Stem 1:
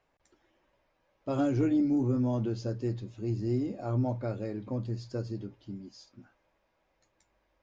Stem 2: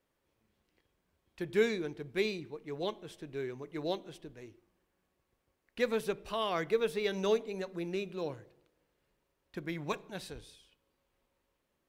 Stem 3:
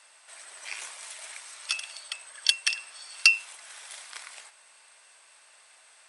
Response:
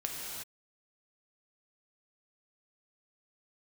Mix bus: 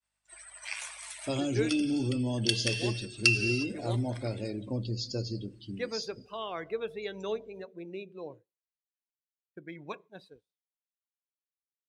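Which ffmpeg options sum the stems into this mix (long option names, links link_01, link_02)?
-filter_complex "[0:a]alimiter=limit=-23.5dB:level=0:latency=1:release=349,highshelf=frequency=2200:width_type=q:width=1.5:gain=13,aeval=exprs='val(0)+0.000708*(sin(2*PI*50*n/s)+sin(2*PI*2*50*n/s)/2+sin(2*PI*3*50*n/s)/3+sin(2*PI*4*50*n/s)/4+sin(2*PI*5*50*n/s)/5)':channel_layout=same,volume=-0.5dB,asplit=3[link_01][link_02][link_03];[link_02]volume=-16dB[link_04];[1:a]highpass=frequency=190:poles=1,volume=-4.5dB,asplit=3[link_05][link_06][link_07];[link_05]atrim=end=1.69,asetpts=PTS-STARTPTS,afade=type=out:start_time=1.686:duration=0.004:curve=hsin[link_08];[link_06]atrim=start=1.69:end=2.43,asetpts=PTS-STARTPTS,volume=0[link_09];[link_07]atrim=start=2.43,asetpts=PTS-STARTPTS,afade=type=in:duration=0.004:curve=hsin[link_10];[link_08][link_09][link_10]concat=n=3:v=0:a=1,asplit=2[link_11][link_12];[link_12]volume=-20dB[link_13];[2:a]volume=-1.5dB,asplit=2[link_14][link_15];[link_15]volume=-11dB[link_16];[link_03]apad=whole_len=268294[link_17];[link_14][link_17]sidechaincompress=threshold=-38dB:ratio=8:attack=26:release=882[link_18];[3:a]atrim=start_sample=2205[link_19];[link_04][link_13][link_16]amix=inputs=3:normalize=0[link_20];[link_20][link_19]afir=irnorm=-1:irlink=0[link_21];[link_01][link_11][link_18][link_21]amix=inputs=4:normalize=0,agate=range=-33dB:threshold=-47dB:ratio=3:detection=peak,afftdn=noise_reduction=19:noise_floor=-47"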